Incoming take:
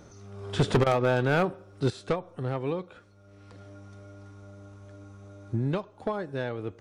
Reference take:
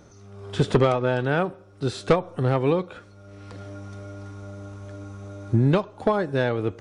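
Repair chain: clip repair -16.5 dBFS; interpolate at 0.84 s, 22 ms; trim 0 dB, from 1.90 s +9 dB

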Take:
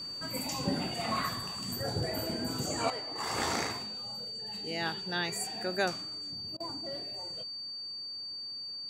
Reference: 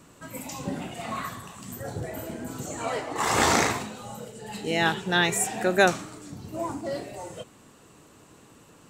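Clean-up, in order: clip repair -17.5 dBFS; band-stop 4.6 kHz, Q 30; interpolate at 6.57 s, 30 ms; trim 0 dB, from 2.90 s +11 dB

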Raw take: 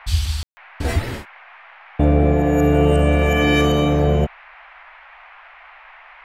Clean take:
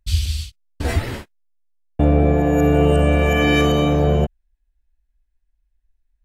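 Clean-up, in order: room tone fill 0.43–0.57 s; noise print and reduce 22 dB

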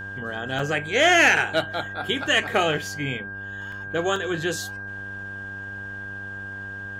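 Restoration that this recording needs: de-hum 99.1 Hz, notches 15; band-stop 1.6 kHz, Q 30; interpolate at 0.59/3.72/4.16 s, 3 ms

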